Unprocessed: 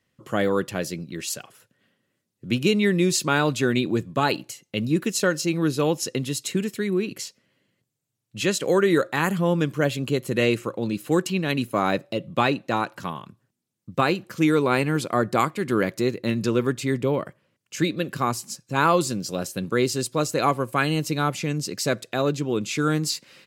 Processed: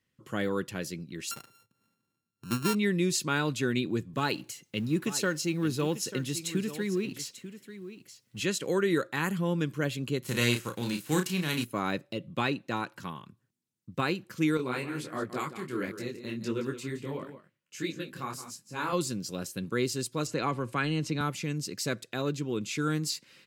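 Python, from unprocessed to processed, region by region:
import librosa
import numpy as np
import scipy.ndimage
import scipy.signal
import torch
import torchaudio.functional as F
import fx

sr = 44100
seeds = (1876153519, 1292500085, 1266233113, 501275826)

y = fx.chain(x, sr, fx.sample_sort(block=32),
    fx.peak_eq(hz=2300.0, db=-3.0, octaves=2.3), at=(1.31, 2.75))
y = fx.chain(y, sr, fx.law_mismatch(coded='mu'),
    fx.highpass(hz=41.0, slope=12),
    fx.echo_single(ms=891, db=-13.0), at=(4.13, 8.4))
y = fx.envelope_flatten(y, sr, power=0.6, at=(10.22, 11.63), fade=0.02)
y = fx.doubler(y, sr, ms=33.0, db=-6.5, at=(10.22, 11.63), fade=0.02)
y = fx.chain(y, sr, fx.peak_eq(hz=82.0, db=-4.5, octaves=1.9),
    fx.echo_single(ms=170, db=-11.5),
    fx.detune_double(cents=52), at=(14.57, 18.93))
y = fx.chain(y, sr, fx.transient(attack_db=0, sustain_db=4),
    fx.air_absorb(metres=68.0),
    fx.band_squash(depth_pct=40), at=(20.27, 21.21))
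y = fx.peak_eq(y, sr, hz=660.0, db=-7.0, octaves=0.79)
y = fx.notch(y, sr, hz=1200.0, q=24.0)
y = y * 10.0 ** (-6.0 / 20.0)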